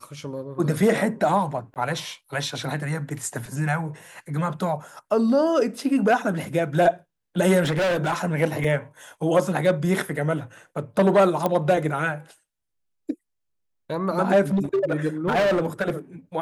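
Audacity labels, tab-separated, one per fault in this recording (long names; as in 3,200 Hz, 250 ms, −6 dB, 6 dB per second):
1.740000	1.760000	drop-out 18 ms
7.620000	8.140000	clipping −19.5 dBFS
8.640000	8.640000	drop-out 2.4 ms
11.460000	11.460000	click −10 dBFS
14.530000	15.910000	clipping −17.5 dBFS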